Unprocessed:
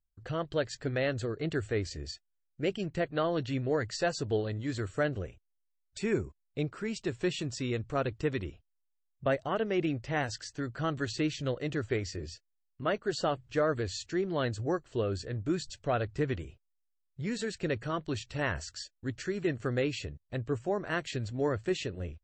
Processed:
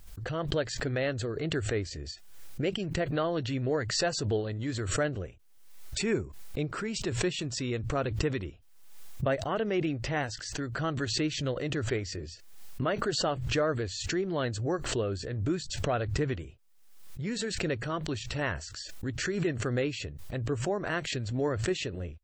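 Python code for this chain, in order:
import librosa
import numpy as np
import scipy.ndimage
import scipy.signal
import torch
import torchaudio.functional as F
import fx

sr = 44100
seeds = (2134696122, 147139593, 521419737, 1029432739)

y = fx.pre_swell(x, sr, db_per_s=51.0)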